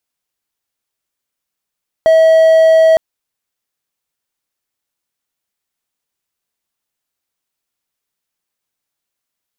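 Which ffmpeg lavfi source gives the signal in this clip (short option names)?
-f lavfi -i "aevalsrc='0.708*(1-4*abs(mod(645*t+0.25,1)-0.5))':d=0.91:s=44100"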